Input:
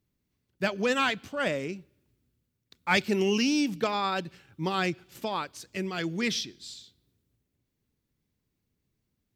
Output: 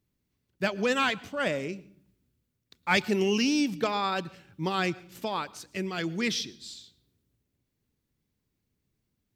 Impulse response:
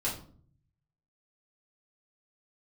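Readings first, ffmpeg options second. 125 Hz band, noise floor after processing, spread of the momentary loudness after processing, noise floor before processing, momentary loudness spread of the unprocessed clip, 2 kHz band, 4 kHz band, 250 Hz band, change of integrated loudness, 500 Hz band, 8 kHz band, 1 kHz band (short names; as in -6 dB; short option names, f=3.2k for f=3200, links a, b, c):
0.0 dB, -80 dBFS, 13 LU, -80 dBFS, 13 LU, 0.0 dB, 0.0 dB, 0.0 dB, 0.0 dB, 0.0 dB, 0.0 dB, 0.0 dB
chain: -filter_complex "[0:a]asplit=2[a][b];[1:a]atrim=start_sample=2205,asetrate=41454,aresample=44100,adelay=108[c];[b][c]afir=irnorm=-1:irlink=0,volume=-28dB[d];[a][d]amix=inputs=2:normalize=0"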